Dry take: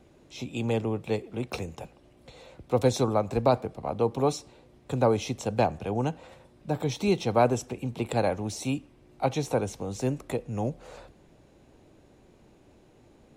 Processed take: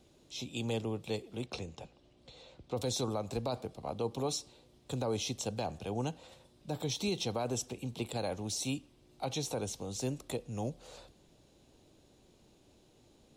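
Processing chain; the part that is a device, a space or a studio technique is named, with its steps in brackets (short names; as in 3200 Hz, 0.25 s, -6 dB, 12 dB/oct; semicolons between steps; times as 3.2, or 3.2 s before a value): 1.46–2.77 air absorption 82 m; over-bright horn tweeter (resonant high shelf 2700 Hz +7.5 dB, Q 1.5; limiter -17.5 dBFS, peak gain reduction 8 dB); gain -7 dB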